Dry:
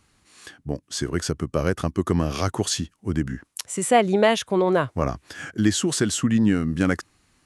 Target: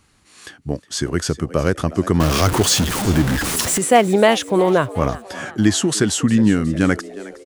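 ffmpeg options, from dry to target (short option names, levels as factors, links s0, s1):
-filter_complex "[0:a]asettb=1/sr,asplit=3[s0][s1][s2];[s0]atrim=end=2.204[s3];[s1]atrim=start=2.2:end=3.78,asetpts=PTS-STARTPTS,afade=t=in:d=0.004:c=qsin,afade=t=out:st=1.576:d=0.004:c=qsin,aeval=exprs='val(0)+0.5*0.0891*sgn(val(0))':c=same[s4];[s2]atrim=start=3.776[s5];[s3][s4]acrossfade=d=0.004:c1=hsin:c2=qsin[s6];[s6][s5]acrossfade=d=0.004:c1=qsin:c2=hsin,asplit=5[s7][s8][s9][s10][s11];[s8]adelay=362,afreqshift=99,volume=0.133[s12];[s9]adelay=724,afreqshift=198,volume=0.0692[s13];[s10]adelay=1086,afreqshift=297,volume=0.0359[s14];[s11]adelay=1448,afreqshift=396,volume=0.0188[s15];[s7][s12][s13][s14][s15]amix=inputs=5:normalize=0,volume=1.68"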